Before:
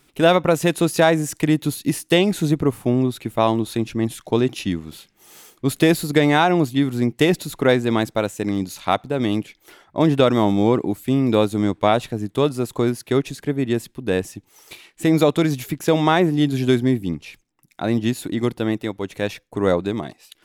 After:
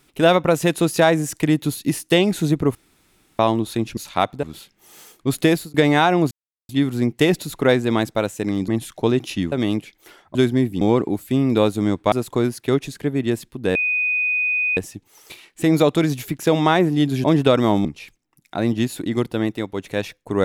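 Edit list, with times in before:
2.75–3.39 room tone
3.97–4.81 swap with 8.68–9.14
5.76–6.12 fade out equal-power
6.69 insert silence 0.38 s
9.97–10.58 swap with 16.65–17.11
11.89–12.55 cut
14.18 add tone 2490 Hz -17.5 dBFS 1.02 s

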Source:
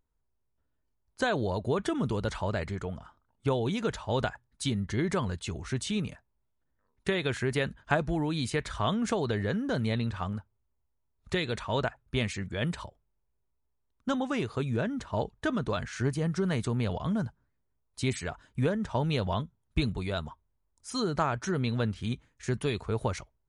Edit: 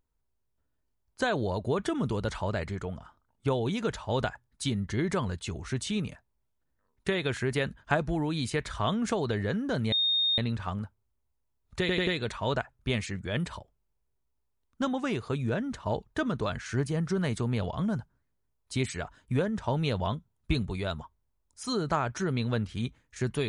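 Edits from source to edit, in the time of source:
9.92 add tone 3690 Hz -23 dBFS 0.46 s
11.34 stutter 0.09 s, 4 plays

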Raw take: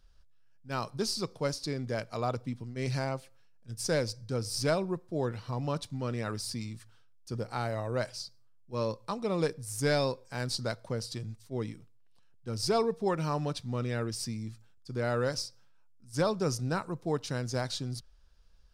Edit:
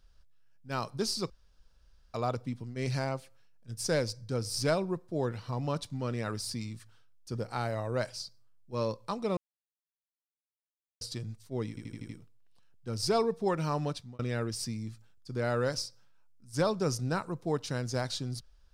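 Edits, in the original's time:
1.3–2.14 room tone
9.37–11.01 mute
11.69 stutter 0.08 s, 6 plays
13.48–13.79 fade out

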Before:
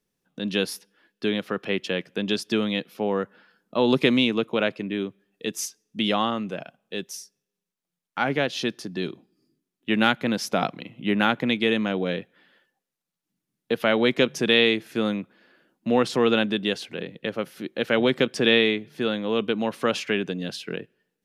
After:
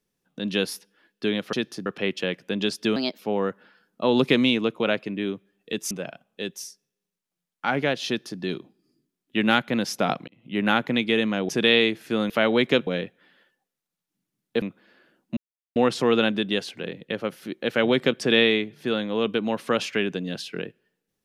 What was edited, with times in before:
2.63–2.92 speed 127%
5.64–6.44 cut
8.6–8.93 copy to 1.53
10.81–11.21 fade in
12.02–13.77 swap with 14.34–15.15
15.9 insert silence 0.39 s

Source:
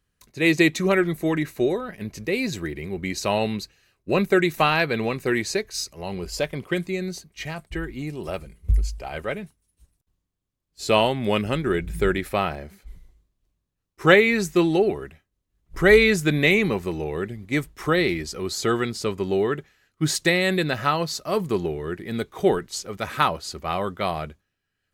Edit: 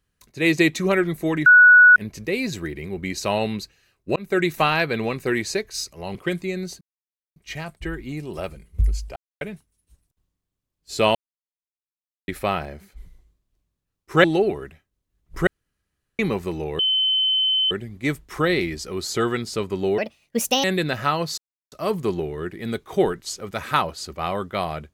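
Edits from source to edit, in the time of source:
1.46–1.96 bleep 1470 Hz -7 dBFS
4.16–4.43 fade in
6.15–6.6 cut
7.26 insert silence 0.55 s
9.06–9.31 mute
11.05–12.18 mute
14.14–14.64 cut
15.87–16.59 room tone
17.19 add tone 3060 Hz -17 dBFS 0.92 s
19.46–20.44 speed 149%
21.18 insert silence 0.34 s

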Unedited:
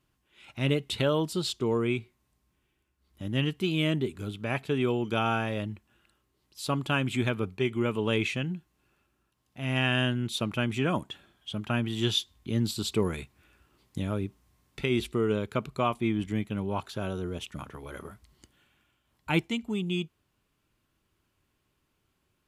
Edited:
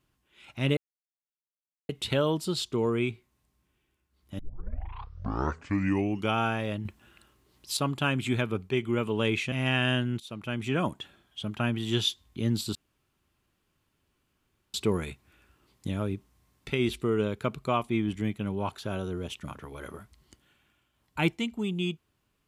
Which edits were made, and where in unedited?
0.77 insert silence 1.12 s
3.27 tape start 1.96 s
5.73–6.65 gain +8.5 dB
8.4–9.62 cut
10.3–10.89 fade in, from -17 dB
12.85 insert room tone 1.99 s

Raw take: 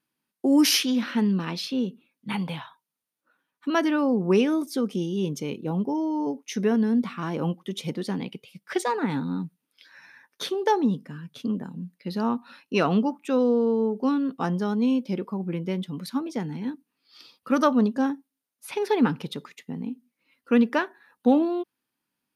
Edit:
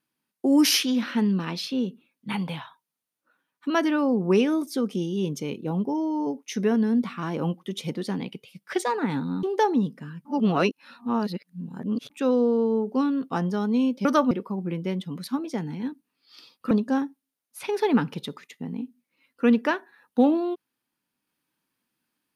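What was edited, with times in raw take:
9.43–10.51 cut
11.33–13.18 reverse
17.53–17.79 move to 15.13

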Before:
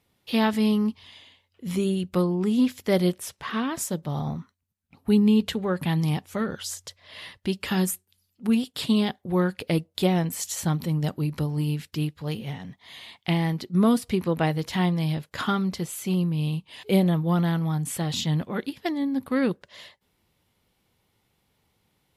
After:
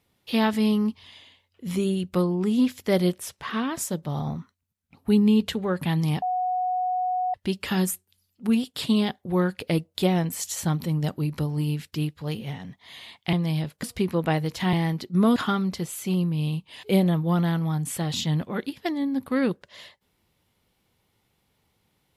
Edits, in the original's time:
6.22–7.34 bleep 734 Hz -22.5 dBFS
13.33–13.96 swap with 14.86–15.36

